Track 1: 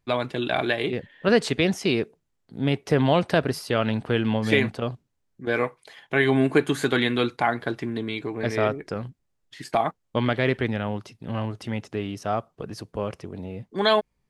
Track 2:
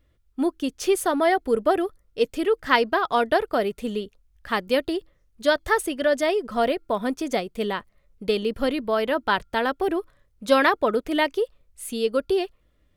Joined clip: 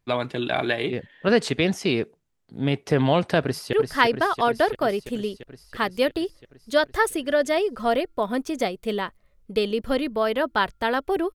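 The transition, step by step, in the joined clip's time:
track 1
0:03.43–0:03.73: delay throw 340 ms, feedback 75%, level −6 dB
0:03.73: continue with track 2 from 0:02.45

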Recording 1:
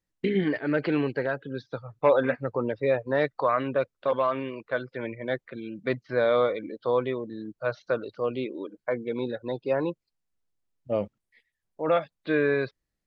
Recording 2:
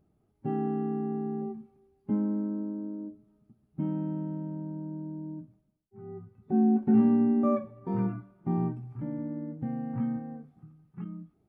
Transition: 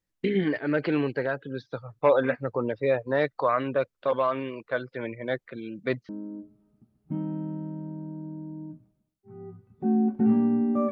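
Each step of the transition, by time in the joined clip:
recording 1
0:06.09: continue with recording 2 from 0:02.77

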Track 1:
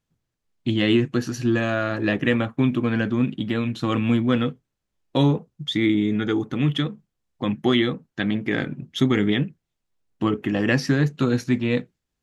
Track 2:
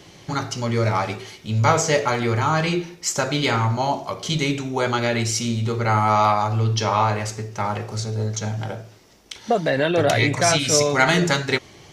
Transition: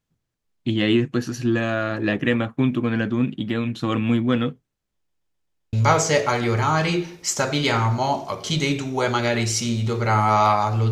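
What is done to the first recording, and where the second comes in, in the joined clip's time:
track 1
0:04.95: stutter in place 0.13 s, 6 plays
0:05.73: continue with track 2 from 0:01.52

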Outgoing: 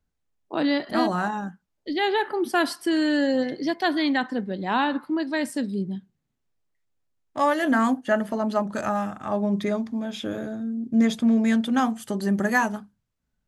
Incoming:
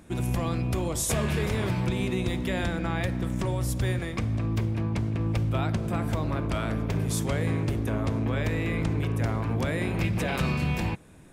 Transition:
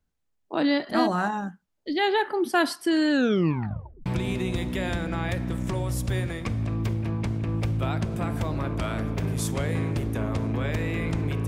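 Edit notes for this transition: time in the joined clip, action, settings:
outgoing
0:03.11: tape stop 0.95 s
0:04.06: continue with incoming from 0:01.78

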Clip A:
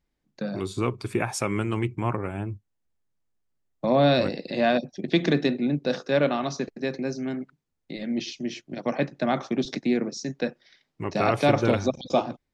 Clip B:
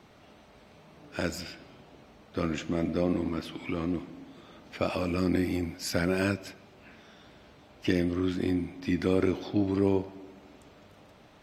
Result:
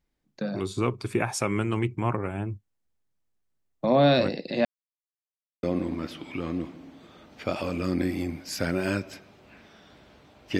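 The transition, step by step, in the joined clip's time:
clip A
0:04.65–0:05.63: silence
0:05.63: continue with clip B from 0:02.97

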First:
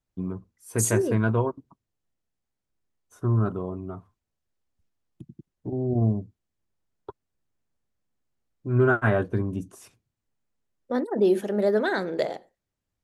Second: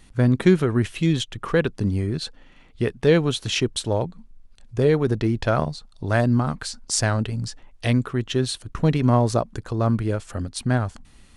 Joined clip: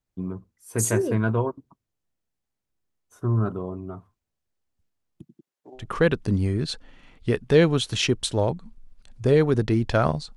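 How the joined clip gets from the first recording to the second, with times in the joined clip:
first
0:05.21–0:05.87: high-pass filter 210 Hz → 1,100 Hz
0:05.80: continue with second from 0:01.33, crossfade 0.14 s

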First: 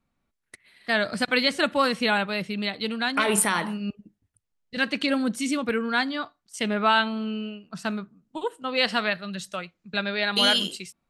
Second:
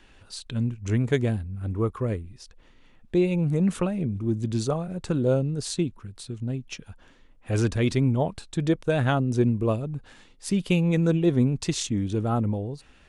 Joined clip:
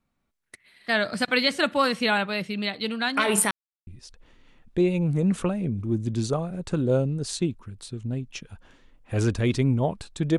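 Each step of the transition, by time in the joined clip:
first
0:03.51–0:03.87: silence
0:03.87: continue with second from 0:02.24

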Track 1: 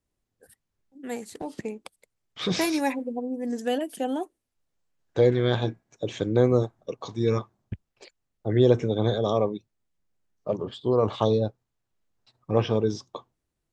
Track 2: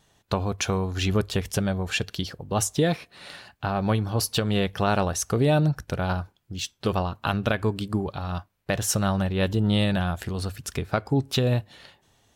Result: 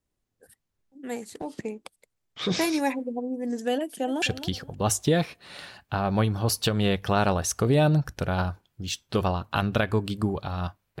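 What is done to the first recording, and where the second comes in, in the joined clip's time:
track 1
0:03.81–0:04.22: delay throw 260 ms, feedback 25%, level −11.5 dB
0:04.22: continue with track 2 from 0:01.93

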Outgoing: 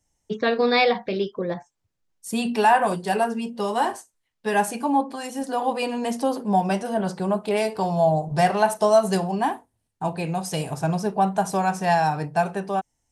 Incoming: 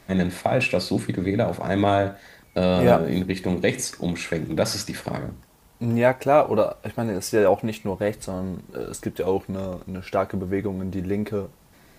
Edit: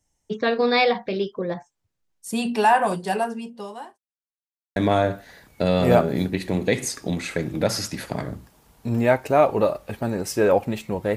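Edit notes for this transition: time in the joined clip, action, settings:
outgoing
0:03.01–0:03.98: fade out linear
0:03.98–0:04.76: silence
0:04.76: continue with incoming from 0:01.72

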